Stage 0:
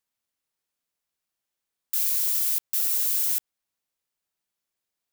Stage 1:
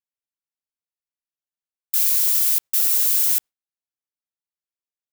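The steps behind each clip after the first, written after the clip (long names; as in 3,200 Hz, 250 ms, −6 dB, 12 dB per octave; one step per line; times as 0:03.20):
noise gate with hold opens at −16 dBFS
level +6 dB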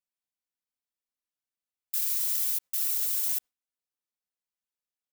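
comb filter 4 ms, depth 52%
brickwall limiter −15.5 dBFS, peak gain reduction 11 dB
level −3 dB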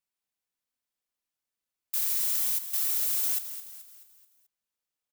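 soft clipping −25 dBFS, distortion −14 dB
on a send: repeating echo 216 ms, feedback 46%, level −11.5 dB
on the sum: level +3 dB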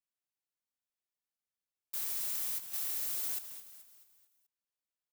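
one scale factor per block 3 bits
level −8.5 dB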